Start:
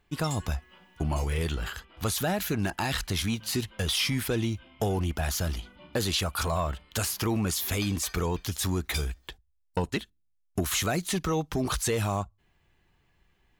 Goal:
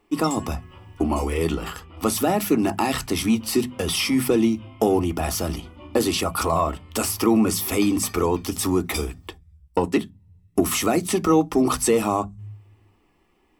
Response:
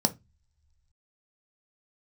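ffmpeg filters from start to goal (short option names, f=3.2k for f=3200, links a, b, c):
-filter_complex "[0:a]bandreject=f=50:t=h:w=6,bandreject=f=100:t=h:w=6,bandreject=f=150:t=h:w=6,bandreject=f=200:t=h:w=6,bandreject=f=250:t=h:w=6,asplit=2[a][b];[1:a]atrim=start_sample=2205,asetrate=61740,aresample=44100[c];[b][c]afir=irnorm=-1:irlink=0,volume=-4.5dB[d];[a][d]amix=inputs=2:normalize=0"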